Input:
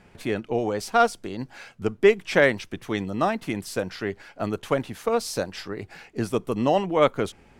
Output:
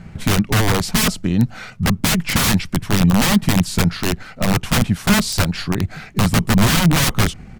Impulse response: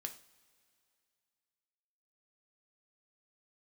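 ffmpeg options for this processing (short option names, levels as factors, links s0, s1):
-af "aeval=exprs='(mod(11.9*val(0)+1,2)-1)/11.9':c=same,lowshelf=f=280:t=q:w=1.5:g=9.5,asetrate=40440,aresample=44100,atempo=1.09051,volume=2.82"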